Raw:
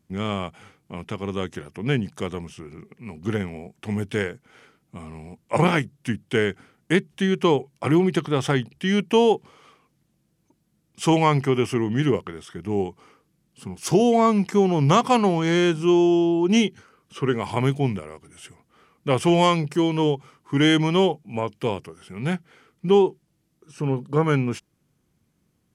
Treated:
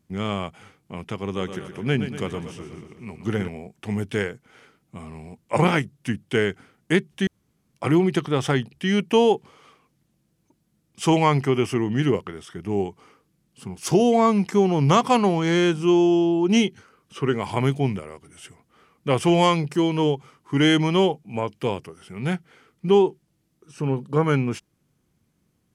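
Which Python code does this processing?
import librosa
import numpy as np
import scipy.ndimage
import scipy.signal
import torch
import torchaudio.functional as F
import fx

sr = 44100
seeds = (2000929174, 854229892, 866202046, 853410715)

y = fx.echo_feedback(x, sr, ms=121, feedback_pct=60, wet_db=-10.0, at=(1.23, 3.48))
y = fx.edit(y, sr, fx.room_tone_fill(start_s=7.27, length_s=0.47), tone=tone)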